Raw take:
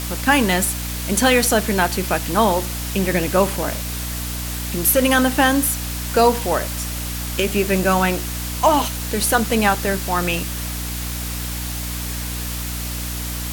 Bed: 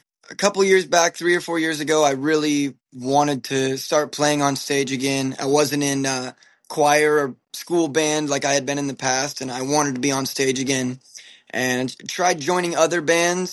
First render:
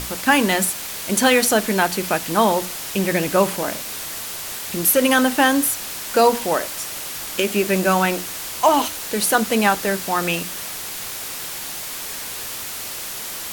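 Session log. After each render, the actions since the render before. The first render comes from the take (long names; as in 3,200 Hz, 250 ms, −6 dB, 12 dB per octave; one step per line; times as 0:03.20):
mains-hum notches 60/120/180/240/300 Hz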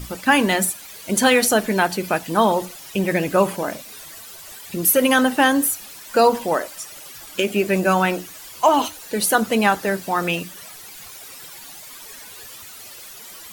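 broadband denoise 13 dB, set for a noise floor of −31 dBFS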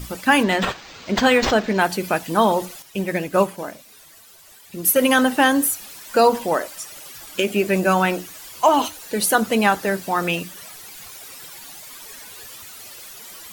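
0:00.43–0:01.81: linearly interpolated sample-rate reduction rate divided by 4×
0:02.82–0:04.96: expander for the loud parts, over −30 dBFS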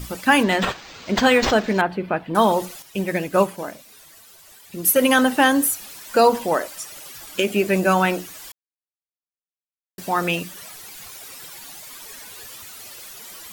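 0:01.81–0:02.35: high-frequency loss of the air 460 metres
0:08.52–0:09.98: silence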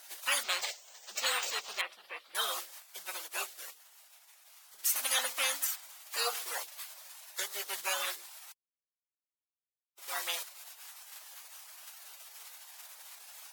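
high-pass filter 930 Hz 24 dB per octave
gate on every frequency bin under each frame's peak −15 dB weak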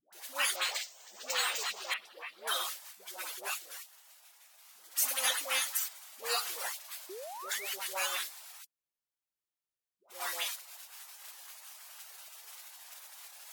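all-pass dispersion highs, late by 127 ms, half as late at 600 Hz
0:07.09–0:07.73: sound drawn into the spectrogram rise 350–3,200 Hz −44 dBFS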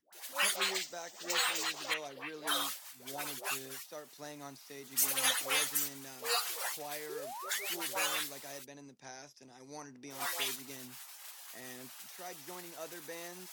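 mix in bed −28.5 dB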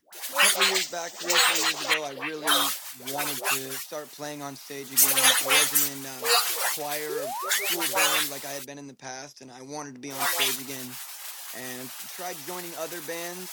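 level +11 dB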